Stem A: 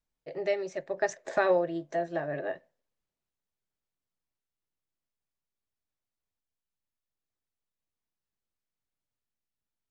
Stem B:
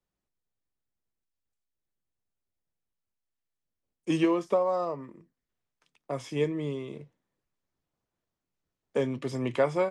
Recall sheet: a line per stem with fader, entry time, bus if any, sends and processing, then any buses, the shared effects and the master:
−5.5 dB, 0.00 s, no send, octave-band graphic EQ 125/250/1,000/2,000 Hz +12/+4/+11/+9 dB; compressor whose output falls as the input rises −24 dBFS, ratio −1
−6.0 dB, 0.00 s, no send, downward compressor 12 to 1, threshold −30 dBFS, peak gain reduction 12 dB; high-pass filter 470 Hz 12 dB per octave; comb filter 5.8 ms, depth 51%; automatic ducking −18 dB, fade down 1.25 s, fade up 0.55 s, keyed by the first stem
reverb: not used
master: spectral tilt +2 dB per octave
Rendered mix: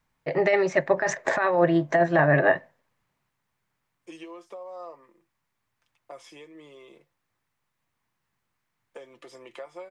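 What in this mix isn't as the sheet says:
stem A −5.5 dB → +5.0 dB
master: missing spectral tilt +2 dB per octave

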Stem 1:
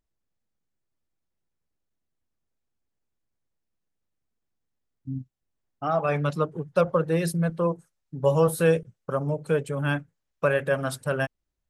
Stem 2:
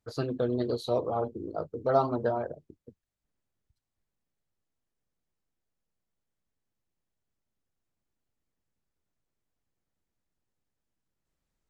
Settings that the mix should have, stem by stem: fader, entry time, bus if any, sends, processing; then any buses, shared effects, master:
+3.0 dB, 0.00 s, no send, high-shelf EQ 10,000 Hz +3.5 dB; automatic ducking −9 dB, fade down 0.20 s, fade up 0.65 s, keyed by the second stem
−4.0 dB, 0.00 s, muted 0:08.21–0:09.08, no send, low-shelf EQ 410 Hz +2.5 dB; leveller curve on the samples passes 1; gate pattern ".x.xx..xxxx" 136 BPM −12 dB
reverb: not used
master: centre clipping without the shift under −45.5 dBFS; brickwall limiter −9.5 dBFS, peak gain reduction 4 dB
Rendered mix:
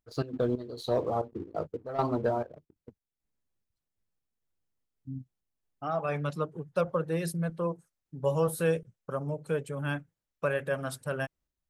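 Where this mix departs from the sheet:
stem 1 +3.0 dB → −6.5 dB
master: missing centre clipping without the shift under −45.5 dBFS

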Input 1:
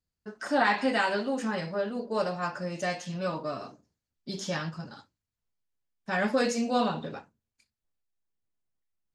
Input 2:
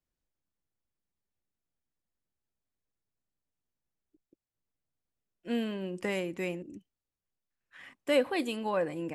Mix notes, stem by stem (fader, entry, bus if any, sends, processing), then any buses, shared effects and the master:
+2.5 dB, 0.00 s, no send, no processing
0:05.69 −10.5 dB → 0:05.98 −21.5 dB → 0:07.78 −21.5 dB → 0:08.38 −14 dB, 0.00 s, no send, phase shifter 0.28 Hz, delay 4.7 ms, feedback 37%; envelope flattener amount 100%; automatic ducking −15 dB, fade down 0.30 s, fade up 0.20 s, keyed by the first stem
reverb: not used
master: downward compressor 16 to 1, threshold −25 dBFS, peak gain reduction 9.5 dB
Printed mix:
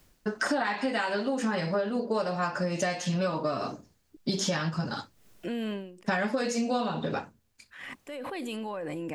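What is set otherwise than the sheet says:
stem 1 +2.5 dB → +13.5 dB
stem 2: missing phase shifter 0.28 Hz, delay 4.7 ms, feedback 37%

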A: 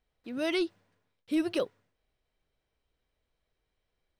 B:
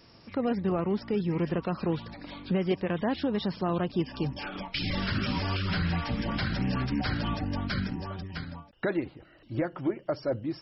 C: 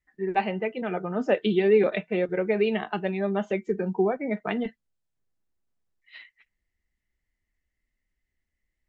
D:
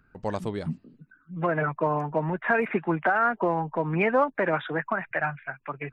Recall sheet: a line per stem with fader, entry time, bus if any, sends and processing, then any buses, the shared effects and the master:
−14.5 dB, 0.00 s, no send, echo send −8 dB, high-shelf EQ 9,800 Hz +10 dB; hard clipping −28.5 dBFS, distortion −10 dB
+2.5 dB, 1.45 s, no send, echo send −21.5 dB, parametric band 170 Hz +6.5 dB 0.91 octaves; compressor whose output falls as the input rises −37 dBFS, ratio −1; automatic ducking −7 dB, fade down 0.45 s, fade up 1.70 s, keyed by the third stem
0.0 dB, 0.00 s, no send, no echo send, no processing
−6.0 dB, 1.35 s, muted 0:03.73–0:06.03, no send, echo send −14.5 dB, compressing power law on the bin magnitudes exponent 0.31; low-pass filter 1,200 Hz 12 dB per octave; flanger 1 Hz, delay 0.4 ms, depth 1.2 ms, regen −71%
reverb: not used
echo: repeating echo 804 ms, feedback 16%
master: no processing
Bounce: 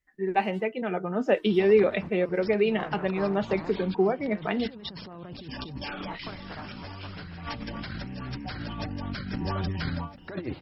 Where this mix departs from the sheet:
stem A −14.5 dB → −21.5 dB
stem B: missing parametric band 170 Hz +6.5 dB 0.91 octaves

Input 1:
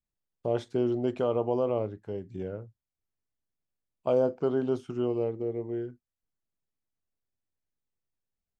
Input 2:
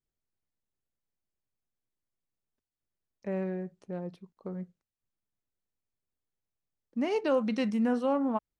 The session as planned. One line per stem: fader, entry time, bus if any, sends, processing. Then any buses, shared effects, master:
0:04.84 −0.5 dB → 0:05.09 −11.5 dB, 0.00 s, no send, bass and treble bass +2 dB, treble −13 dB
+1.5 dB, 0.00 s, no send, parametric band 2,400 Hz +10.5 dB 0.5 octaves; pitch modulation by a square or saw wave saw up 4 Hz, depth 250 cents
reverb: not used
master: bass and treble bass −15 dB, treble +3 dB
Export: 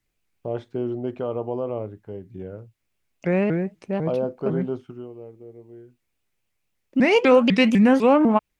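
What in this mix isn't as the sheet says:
stem 2 +1.5 dB → +11.5 dB
master: missing bass and treble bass −15 dB, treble +3 dB

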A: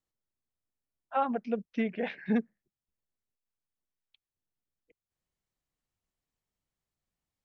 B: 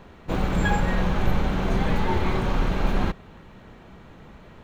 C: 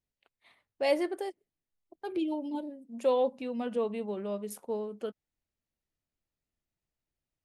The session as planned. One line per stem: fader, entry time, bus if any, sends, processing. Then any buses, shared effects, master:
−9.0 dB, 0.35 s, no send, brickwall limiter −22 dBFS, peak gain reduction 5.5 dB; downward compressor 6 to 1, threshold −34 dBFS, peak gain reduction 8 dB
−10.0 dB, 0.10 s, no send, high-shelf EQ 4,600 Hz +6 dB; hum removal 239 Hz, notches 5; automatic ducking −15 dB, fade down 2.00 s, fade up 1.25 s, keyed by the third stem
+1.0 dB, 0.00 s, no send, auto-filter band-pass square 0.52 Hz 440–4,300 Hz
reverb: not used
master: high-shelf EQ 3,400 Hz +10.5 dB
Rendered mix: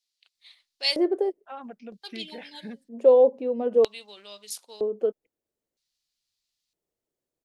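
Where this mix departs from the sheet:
stem A: missing downward compressor 6 to 1, threshold −34 dBFS, peak gain reduction 8 dB
stem B: muted
stem C +1.0 dB → +12.5 dB

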